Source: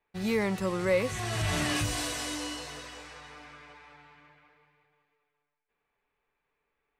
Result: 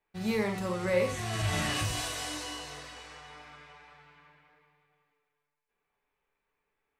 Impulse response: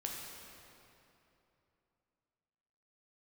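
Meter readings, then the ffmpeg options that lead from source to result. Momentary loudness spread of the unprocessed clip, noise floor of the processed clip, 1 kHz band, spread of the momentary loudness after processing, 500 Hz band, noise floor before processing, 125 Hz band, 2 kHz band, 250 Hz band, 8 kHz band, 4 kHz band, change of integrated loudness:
19 LU, −84 dBFS, −0.5 dB, 19 LU, −1.5 dB, −83 dBFS, −0.5 dB, −1.5 dB, −2.5 dB, −2.0 dB, −1.0 dB, −1.5 dB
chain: -filter_complex "[1:a]atrim=start_sample=2205,atrim=end_sample=3969[link_01];[0:a][link_01]afir=irnorm=-1:irlink=0"

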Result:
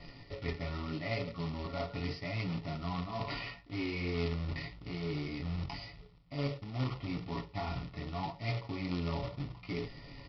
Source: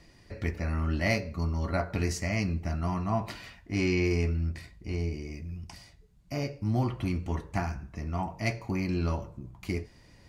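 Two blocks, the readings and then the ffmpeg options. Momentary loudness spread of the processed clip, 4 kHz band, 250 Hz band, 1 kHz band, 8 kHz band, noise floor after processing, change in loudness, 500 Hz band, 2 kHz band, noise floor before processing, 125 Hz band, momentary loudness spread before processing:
6 LU, −1.0 dB, −6.5 dB, −5.0 dB, below −20 dB, −55 dBFS, −7.0 dB, −6.0 dB, −6.5 dB, −57 dBFS, −7.0 dB, 13 LU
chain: -af "equalizer=frequency=3500:width_type=o:width=0.49:gain=-3.5,aecho=1:1:7.1:0.59,areverse,acompressor=threshold=-41dB:ratio=5,areverse,flanger=delay=17:depth=6.7:speed=0.82,aresample=11025,acrusher=bits=2:mode=log:mix=0:aa=0.000001,aresample=44100,asuperstop=centerf=1600:order=8:qfactor=5.5,volume=8dB"

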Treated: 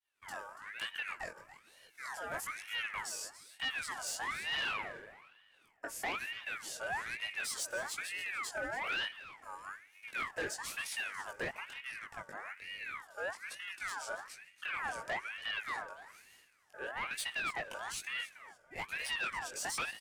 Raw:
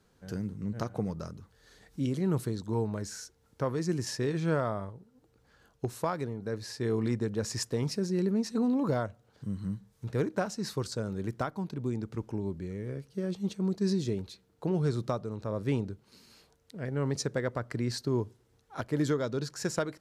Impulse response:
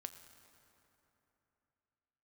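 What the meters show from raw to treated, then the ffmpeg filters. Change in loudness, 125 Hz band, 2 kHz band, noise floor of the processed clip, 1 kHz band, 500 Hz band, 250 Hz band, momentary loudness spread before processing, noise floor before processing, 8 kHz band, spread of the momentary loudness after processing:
−6.0 dB, −28.5 dB, +8.5 dB, −67 dBFS, −1.0 dB, −14.0 dB, −25.5 dB, 11 LU, −68 dBFS, 0.0 dB, 12 LU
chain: -filter_complex "[0:a]aemphasis=mode=reproduction:type=50fm,agate=range=-33dB:threshold=-56dB:ratio=3:detection=peak,lowshelf=frequency=390:width_type=q:width=3:gain=-10,bandreject=frequency=5200:width=8.7,flanger=delay=18.5:depth=2.9:speed=1.4,aexciter=amount=8.7:drive=3.1:freq=5800,asoftclip=type=tanh:threshold=-33.5dB,aecho=1:1:284|568|852:0.178|0.0427|0.0102,asplit=2[link_01][link_02];[1:a]atrim=start_sample=2205[link_03];[link_02][link_03]afir=irnorm=-1:irlink=0,volume=-6dB[link_04];[link_01][link_04]amix=inputs=2:normalize=0,aeval=exprs='val(0)*sin(2*PI*1700*n/s+1700*0.4/1.1*sin(2*PI*1.1*n/s))':channel_layout=same,volume=1dB"

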